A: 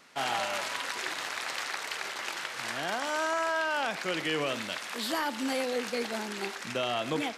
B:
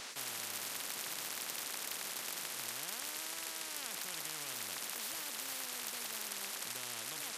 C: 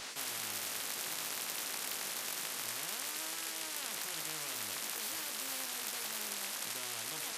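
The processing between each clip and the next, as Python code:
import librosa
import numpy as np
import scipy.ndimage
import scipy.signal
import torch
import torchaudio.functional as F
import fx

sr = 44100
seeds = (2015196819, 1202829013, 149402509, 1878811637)

y1 = fx.highpass(x, sr, hz=1100.0, slope=6)
y1 = fx.spectral_comp(y1, sr, ratio=10.0)
y1 = y1 * 10.0 ** (1.0 / 20.0)
y2 = fx.doubler(y1, sr, ms=19.0, db=-5.0)
y2 = y2 * 10.0 ** (1.0 / 20.0)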